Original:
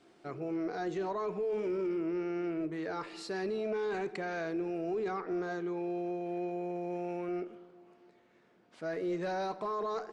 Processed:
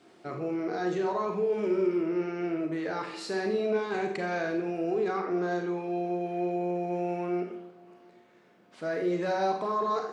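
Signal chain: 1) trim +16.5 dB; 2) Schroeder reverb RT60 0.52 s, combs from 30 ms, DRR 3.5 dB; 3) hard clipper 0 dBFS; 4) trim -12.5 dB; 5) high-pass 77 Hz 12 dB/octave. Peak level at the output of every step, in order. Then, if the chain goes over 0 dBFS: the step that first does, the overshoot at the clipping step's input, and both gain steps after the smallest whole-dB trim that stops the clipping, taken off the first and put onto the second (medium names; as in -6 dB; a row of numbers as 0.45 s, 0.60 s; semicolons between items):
-11.0 dBFS, -4.5 dBFS, -4.5 dBFS, -17.0 dBFS, -17.0 dBFS; nothing clips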